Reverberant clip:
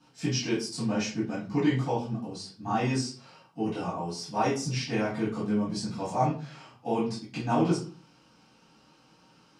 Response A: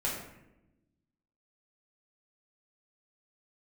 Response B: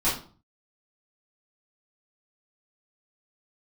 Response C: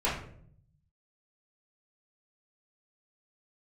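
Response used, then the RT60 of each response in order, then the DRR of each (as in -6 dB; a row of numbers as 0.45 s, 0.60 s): B; 0.90 s, 0.40 s, 0.60 s; -5.5 dB, -11.5 dB, -10.0 dB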